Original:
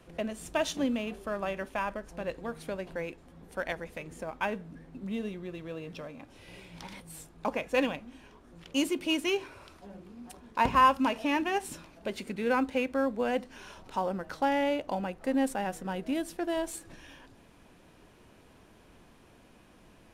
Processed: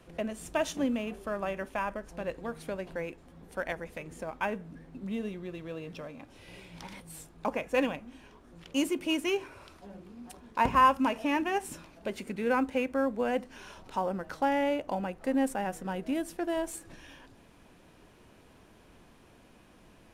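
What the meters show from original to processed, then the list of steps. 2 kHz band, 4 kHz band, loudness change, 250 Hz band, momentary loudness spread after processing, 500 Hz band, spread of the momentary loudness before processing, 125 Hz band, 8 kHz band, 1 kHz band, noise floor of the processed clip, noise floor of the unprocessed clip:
-1.0 dB, -3.0 dB, -0.5 dB, 0.0 dB, 19 LU, 0.0 dB, 19 LU, 0.0 dB, -1.0 dB, 0.0 dB, -58 dBFS, -58 dBFS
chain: dynamic EQ 4000 Hz, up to -6 dB, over -53 dBFS, Q 1.7

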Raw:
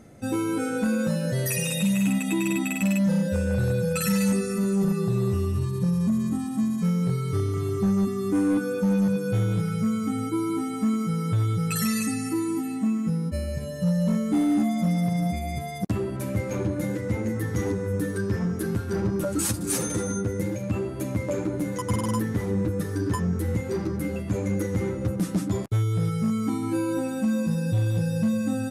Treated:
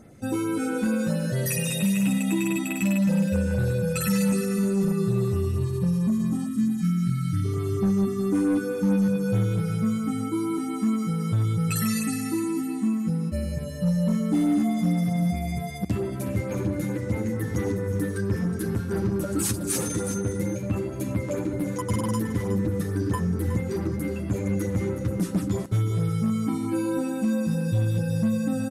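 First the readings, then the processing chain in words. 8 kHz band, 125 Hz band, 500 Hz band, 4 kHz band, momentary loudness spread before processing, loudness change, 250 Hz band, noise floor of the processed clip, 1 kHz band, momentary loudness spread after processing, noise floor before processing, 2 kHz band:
-0.5 dB, +0.5 dB, -0.5 dB, -1.0 dB, 5 LU, 0.0 dB, +0.5 dB, -31 dBFS, -1.5 dB, 5 LU, -32 dBFS, -1.0 dB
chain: spectral delete 6.45–7.45, 350–1200 Hz; LFO notch sine 4.5 Hz 590–6900 Hz; echo 0.367 s -11 dB

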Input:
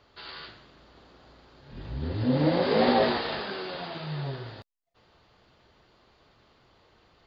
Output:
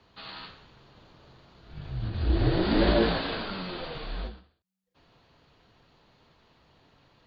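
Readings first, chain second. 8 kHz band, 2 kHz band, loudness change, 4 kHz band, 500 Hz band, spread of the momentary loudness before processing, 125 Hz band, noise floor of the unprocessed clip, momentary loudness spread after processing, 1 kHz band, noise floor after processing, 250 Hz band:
n/a, -1.0 dB, -1.0 dB, 0.0 dB, -3.0 dB, 20 LU, +1.5 dB, -63 dBFS, 19 LU, -5.0 dB, -76 dBFS, -0.5 dB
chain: frequency shift -190 Hz; ending taper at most 140 dB/s

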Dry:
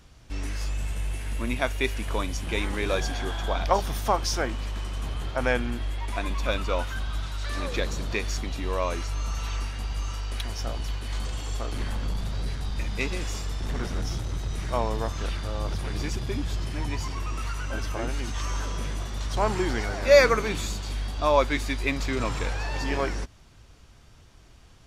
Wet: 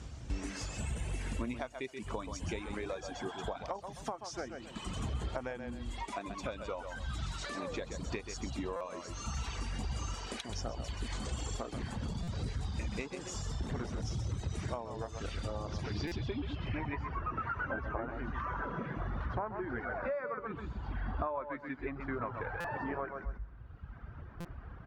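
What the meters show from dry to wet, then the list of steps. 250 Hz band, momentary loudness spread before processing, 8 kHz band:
-7.0 dB, 8 LU, -9.5 dB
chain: notches 50/100/150 Hz; reverb removal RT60 1.3 s; dynamic EQ 820 Hz, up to +5 dB, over -41 dBFS, Q 0.74; feedback echo 0.129 s, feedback 16%, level -10 dB; compressor 12:1, threshold -42 dBFS, peak gain reduction 33 dB; HPF 43 Hz 24 dB/oct; low-pass sweep 7800 Hz -> 1500 Hz, 15.52–17.23; tilt -2 dB/oct; stuck buffer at 8.76/12.23/16.07/22.6/24.4, samples 256, times 7; gain +4 dB

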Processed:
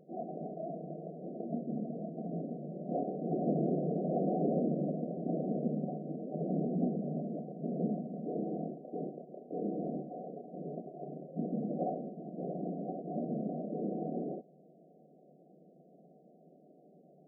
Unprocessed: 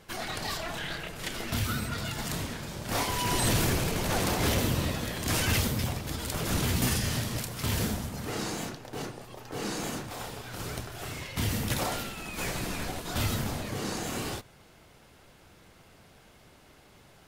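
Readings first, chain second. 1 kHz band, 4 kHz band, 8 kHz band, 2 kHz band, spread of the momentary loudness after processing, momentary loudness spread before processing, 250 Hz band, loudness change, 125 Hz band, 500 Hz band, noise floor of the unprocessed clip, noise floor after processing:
-7.5 dB, under -40 dB, under -40 dB, under -40 dB, 11 LU, 11 LU, 0.0 dB, -6.0 dB, -9.0 dB, 0.0 dB, -57 dBFS, -61 dBFS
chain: FFT band-pass 150–760 Hz

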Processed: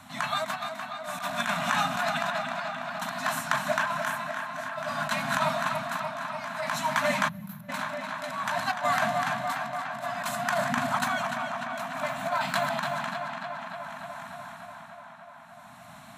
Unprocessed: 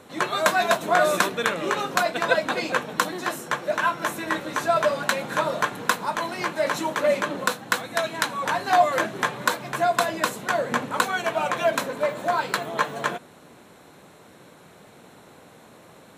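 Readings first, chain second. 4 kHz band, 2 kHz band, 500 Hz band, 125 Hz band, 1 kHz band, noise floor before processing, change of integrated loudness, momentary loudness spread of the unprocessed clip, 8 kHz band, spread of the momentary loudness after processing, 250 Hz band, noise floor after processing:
-4.5 dB, -4.5 dB, -8.5 dB, -1.0 dB, -4.5 dB, -50 dBFS, -5.5 dB, 7 LU, -6.5 dB, 15 LU, -5.0 dB, -48 dBFS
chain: regenerating reverse delay 0.145 s, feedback 78%, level -14 dB; Chebyshev band-stop 260–640 Hz, order 4; negative-ratio compressor -25 dBFS, ratio -0.5; tremolo 0.56 Hz, depth 87%; tape echo 0.295 s, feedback 82%, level -6 dB, low-pass 4800 Hz; spectral gain 7.29–7.69, 220–11000 Hz -23 dB

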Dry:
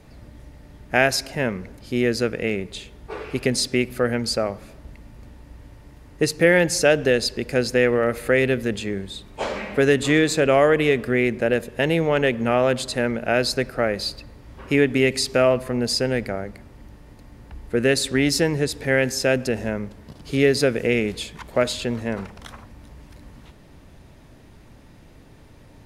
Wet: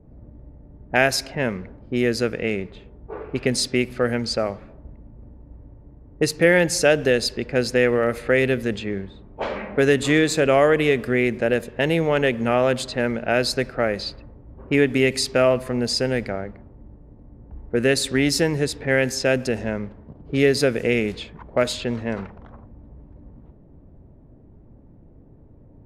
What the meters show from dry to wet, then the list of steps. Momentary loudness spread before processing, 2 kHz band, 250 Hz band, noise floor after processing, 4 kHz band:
12 LU, 0.0 dB, 0.0 dB, -49 dBFS, -0.5 dB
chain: low-pass opened by the level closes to 440 Hz, open at -18 dBFS

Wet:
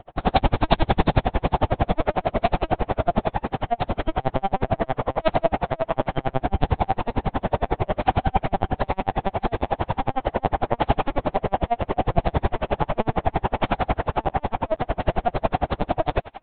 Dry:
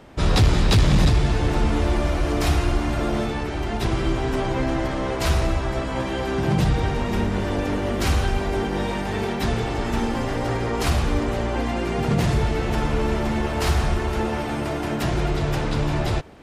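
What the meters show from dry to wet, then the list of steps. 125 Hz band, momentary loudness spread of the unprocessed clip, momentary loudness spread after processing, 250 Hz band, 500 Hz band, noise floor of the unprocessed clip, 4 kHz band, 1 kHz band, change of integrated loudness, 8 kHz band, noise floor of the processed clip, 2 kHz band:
-5.0 dB, 6 LU, 4 LU, -4.0 dB, +1.0 dB, -27 dBFS, -6.0 dB, +5.5 dB, -1.5 dB, under -40 dB, -53 dBFS, -3.5 dB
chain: bell 740 Hz +13.5 dB 0.87 oct; on a send: thinning echo 0.4 s, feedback 80%, high-pass 1100 Hz, level -12 dB; on the sum: LPC vocoder at 8 kHz pitch kept; dB-linear tremolo 11 Hz, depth 38 dB; gain +2 dB

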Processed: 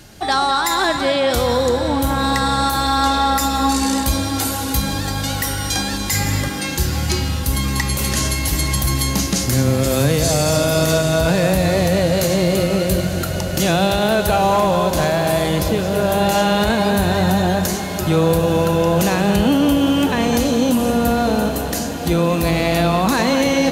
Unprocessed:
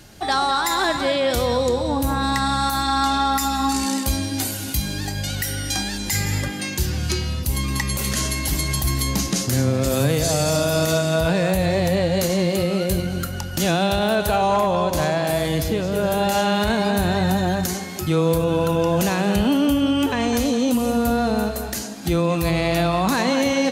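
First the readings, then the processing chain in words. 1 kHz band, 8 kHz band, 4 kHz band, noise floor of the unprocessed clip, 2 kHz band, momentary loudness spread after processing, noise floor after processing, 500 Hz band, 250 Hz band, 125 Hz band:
+3.5 dB, +3.5 dB, +3.5 dB, -29 dBFS, +3.5 dB, 5 LU, -23 dBFS, +3.5 dB, +3.5 dB, +3.5 dB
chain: on a send: diffused feedback echo 0.884 s, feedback 77%, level -12.5 dB; on the sum: gain +3 dB

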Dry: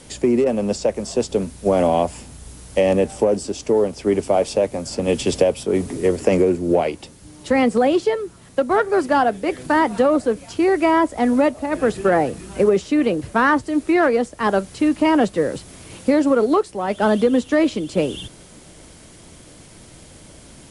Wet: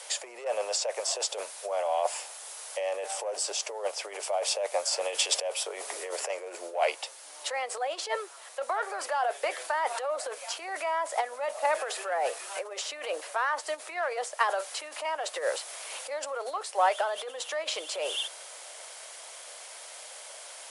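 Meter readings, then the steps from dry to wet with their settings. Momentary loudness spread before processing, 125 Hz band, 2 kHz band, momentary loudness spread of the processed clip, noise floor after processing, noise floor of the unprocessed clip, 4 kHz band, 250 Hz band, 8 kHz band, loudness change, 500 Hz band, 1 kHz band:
8 LU, under -40 dB, -8.5 dB, 13 LU, -46 dBFS, -45 dBFS, 0.0 dB, -37.5 dB, +2.0 dB, -12.0 dB, -14.0 dB, -8.5 dB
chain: negative-ratio compressor -22 dBFS, ratio -1; steep high-pass 570 Hz 36 dB/oct; gain -2 dB

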